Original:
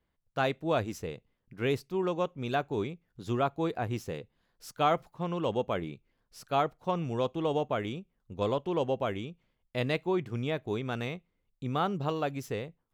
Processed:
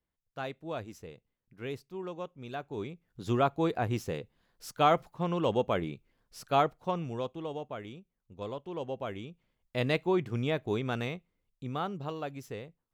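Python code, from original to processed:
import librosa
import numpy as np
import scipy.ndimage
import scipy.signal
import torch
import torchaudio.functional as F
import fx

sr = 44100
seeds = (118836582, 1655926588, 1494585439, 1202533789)

y = fx.gain(x, sr, db=fx.line((2.57, -9.0), (3.24, 2.0), (6.62, 2.0), (7.55, -9.0), (8.64, -9.0), (9.93, 1.5), (10.88, 1.5), (12.01, -6.0)))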